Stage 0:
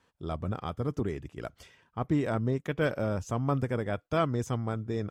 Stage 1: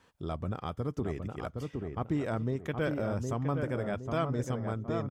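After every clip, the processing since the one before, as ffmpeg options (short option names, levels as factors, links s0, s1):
-filter_complex "[0:a]asplit=2[s0][s1];[s1]adelay=765,lowpass=f=1400:p=1,volume=0.562,asplit=2[s2][s3];[s3]adelay=765,lowpass=f=1400:p=1,volume=0.38,asplit=2[s4][s5];[s5]adelay=765,lowpass=f=1400:p=1,volume=0.38,asplit=2[s6][s7];[s7]adelay=765,lowpass=f=1400:p=1,volume=0.38,asplit=2[s8][s9];[s9]adelay=765,lowpass=f=1400:p=1,volume=0.38[s10];[s0][s2][s4][s6][s8][s10]amix=inputs=6:normalize=0,acompressor=threshold=0.00447:ratio=1.5,volume=1.68"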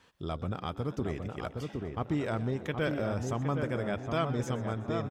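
-filter_complex "[0:a]equalizer=f=3400:w=0.76:g=5,asplit=7[s0][s1][s2][s3][s4][s5][s6];[s1]adelay=125,afreqshift=90,volume=0.141[s7];[s2]adelay=250,afreqshift=180,volume=0.0861[s8];[s3]adelay=375,afreqshift=270,volume=0.0525[s9];[s4]adelay=500,afreqshift=360,volume=0.032[s10];[s5]adelay=625,afreqshift=450,volume=0.0195[s11];[s6]adelay=750,afreqshift=540,volume=0.0119[s12];[s0][s7][s8][s9][s10][s11][s12]amix=inputs=7:normalize=0"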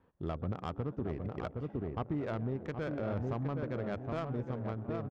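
-af "alimiter=level_in=1.12:limit=0.0631:level=0:latency=1:release=323,volume=0.891,adynamicsmooth=sensitivity=3:basefreq=840"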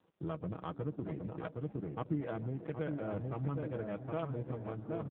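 -af "aecho=1:1:6.3:0.57,volume=0.794" -ar 8000 -c:a libopencore_amrnb -b:a 5900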